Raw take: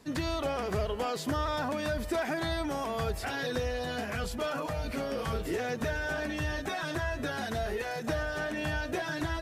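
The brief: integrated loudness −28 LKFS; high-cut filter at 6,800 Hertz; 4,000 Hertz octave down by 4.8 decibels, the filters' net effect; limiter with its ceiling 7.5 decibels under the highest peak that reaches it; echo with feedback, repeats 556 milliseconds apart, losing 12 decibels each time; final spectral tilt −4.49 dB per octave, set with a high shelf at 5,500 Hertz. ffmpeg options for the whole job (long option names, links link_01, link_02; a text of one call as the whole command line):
ffmpeg -i in.wav -af "lowpass=6800,equalizer=frequency=4000:width_type=o:gain=-8.5,highshelf=frequency=5500:gain=7,alimiter=level_in=2.5dB:limit=-24dB:level=0:latency=1,volume=-2.5dB,aecho=1:1:556|1112|1668:0.251|0.0628|0.0157,volume=7dB" out.wav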